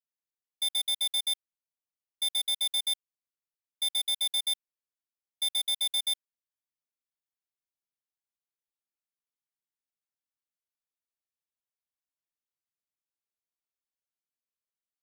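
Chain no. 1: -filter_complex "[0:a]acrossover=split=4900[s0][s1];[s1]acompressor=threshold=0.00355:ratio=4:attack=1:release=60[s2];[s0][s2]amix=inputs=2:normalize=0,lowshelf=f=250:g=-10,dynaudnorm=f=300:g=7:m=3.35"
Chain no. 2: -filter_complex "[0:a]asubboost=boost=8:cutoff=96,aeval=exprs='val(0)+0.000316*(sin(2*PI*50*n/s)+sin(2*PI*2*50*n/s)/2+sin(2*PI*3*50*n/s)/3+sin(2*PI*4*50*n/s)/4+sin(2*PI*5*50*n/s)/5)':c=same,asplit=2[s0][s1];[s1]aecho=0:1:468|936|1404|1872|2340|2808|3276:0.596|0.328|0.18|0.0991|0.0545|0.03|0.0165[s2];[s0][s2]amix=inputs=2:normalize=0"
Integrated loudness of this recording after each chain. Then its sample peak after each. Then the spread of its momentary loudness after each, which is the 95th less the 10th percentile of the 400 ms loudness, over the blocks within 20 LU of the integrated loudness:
-21.0 LUFS, -28.0 LUFS; -15.0 dBFS, -23.0 dBFS; 8 LU, 14 LU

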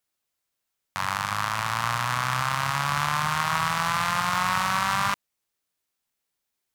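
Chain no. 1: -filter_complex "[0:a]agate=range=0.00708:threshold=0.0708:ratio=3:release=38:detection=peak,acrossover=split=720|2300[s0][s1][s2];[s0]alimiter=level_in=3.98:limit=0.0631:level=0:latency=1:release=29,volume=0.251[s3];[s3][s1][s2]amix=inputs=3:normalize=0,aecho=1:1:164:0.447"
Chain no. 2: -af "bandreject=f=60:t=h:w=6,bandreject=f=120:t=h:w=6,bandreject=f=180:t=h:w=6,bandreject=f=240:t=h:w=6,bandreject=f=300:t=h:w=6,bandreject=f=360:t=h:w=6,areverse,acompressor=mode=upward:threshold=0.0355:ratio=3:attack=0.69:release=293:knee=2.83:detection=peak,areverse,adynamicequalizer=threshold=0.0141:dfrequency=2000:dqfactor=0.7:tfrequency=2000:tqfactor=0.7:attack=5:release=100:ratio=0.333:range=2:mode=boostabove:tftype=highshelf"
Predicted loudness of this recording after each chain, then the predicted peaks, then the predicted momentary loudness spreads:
-32.5 LUFS, -24.0 LUFS; -14.5 dBFS, -5.0 dBFS; 11 LU, 4 LU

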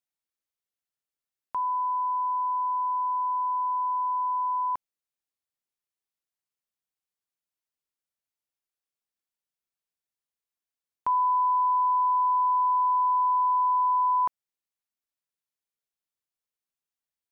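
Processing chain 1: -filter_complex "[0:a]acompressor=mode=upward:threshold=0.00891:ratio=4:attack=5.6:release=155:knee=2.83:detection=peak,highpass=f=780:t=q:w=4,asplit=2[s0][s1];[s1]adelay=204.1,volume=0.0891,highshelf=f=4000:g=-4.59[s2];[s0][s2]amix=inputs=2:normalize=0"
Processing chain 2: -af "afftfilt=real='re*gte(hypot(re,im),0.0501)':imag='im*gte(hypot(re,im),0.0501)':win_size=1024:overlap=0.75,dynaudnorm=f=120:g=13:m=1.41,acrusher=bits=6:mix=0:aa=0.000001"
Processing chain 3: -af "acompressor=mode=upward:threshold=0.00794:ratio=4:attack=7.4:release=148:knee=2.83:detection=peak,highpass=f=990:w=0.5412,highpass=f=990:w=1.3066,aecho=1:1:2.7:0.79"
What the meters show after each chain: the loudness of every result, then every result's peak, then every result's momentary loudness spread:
-17.5 LUFS, -22.0 LUFS, -27.5 LUFS; -10.5 dBFS, -17.0 dBFS, -13.5 dBFS; 6 LU, 6 LU, 6 LU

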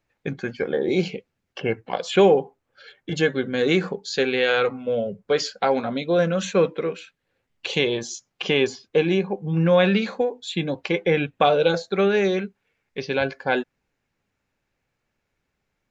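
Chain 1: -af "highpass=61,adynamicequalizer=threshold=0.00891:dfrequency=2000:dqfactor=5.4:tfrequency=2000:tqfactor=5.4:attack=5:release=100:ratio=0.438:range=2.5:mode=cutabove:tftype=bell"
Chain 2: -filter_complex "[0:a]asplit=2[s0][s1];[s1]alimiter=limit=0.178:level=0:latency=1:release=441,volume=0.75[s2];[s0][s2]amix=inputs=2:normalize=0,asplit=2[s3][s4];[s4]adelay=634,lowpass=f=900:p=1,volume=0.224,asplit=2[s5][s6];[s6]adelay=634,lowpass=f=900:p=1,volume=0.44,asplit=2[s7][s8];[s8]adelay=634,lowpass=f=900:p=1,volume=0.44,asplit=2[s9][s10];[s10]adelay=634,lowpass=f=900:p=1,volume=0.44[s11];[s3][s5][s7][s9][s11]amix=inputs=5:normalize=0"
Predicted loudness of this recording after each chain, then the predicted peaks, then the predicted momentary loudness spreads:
-22.5 LUFS, -20.0 LUFS; -5.5 dBFS, -3.5 dBFS; 13 LU, 15 LU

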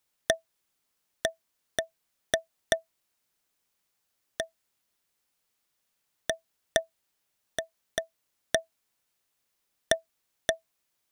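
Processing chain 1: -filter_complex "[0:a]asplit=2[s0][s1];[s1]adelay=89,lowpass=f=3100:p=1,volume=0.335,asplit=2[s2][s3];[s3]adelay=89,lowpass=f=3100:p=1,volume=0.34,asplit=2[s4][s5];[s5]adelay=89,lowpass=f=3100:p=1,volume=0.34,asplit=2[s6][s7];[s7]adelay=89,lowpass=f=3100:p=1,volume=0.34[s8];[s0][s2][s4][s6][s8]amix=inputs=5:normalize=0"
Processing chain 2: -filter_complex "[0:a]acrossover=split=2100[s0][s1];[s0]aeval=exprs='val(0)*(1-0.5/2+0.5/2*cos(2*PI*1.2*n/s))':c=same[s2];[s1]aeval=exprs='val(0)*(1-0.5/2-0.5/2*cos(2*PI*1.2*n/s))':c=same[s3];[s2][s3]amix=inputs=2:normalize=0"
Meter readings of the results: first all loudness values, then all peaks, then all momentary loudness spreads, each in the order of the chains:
-33.5 LUFS, -36.0 LUFS; -4.5 dBFS, -8.5 dBFS; 13 LU, 12 LU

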